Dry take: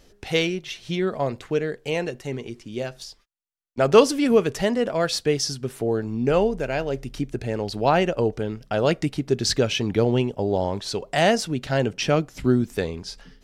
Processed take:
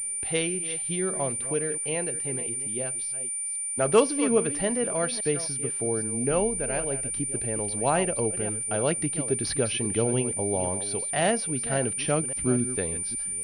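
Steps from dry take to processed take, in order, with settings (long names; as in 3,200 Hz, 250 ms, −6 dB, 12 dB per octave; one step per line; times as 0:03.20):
delay that plays each chunk backwards 274 ms, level −12.5 dB
steady tone 2,300 Hz −42 dBFS
switching amplifier with a slow clock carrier 9,200 Hz
level −5.5 dB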